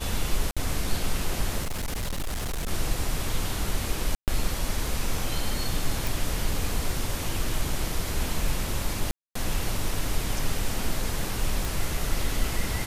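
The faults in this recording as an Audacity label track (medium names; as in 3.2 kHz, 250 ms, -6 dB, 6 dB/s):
0.510000	0.570000	dropout 56 ms
1.620000	2.710000	clipped -26 dBFS
4.150000	4.280000	dropout 128 ms
6.070000	6.070000	pop
9.110000	9.350000	dropout 244 ms
11.650000	11.650000	pop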